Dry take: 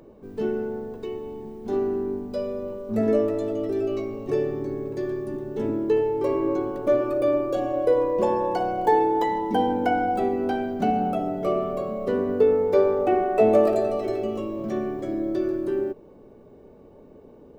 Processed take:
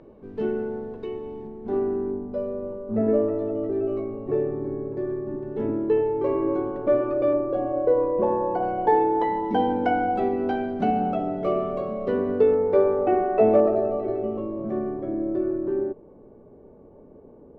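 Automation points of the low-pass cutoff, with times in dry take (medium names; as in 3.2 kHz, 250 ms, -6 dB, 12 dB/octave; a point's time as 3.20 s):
3.2 kHz
from 1.47 s 1.9 kHz
from 2.11 s 1.3 kHz
from 5.43 s 2.1 kHz
from 7.33 s 1.3 kHz
from 8.63 s 2.2 kHz
from 9.44 s 3.4 kHz
from 12.54 s 2 kHz
from 13.60 s 1.2 kHz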